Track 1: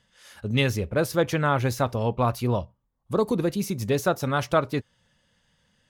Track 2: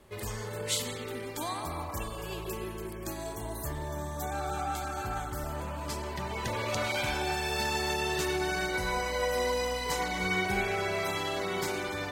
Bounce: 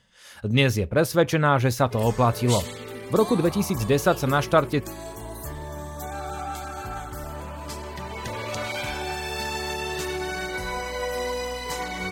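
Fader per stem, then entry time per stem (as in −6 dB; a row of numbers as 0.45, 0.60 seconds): +3.0, +1.0 decibels; 0.00, 1.80 seconds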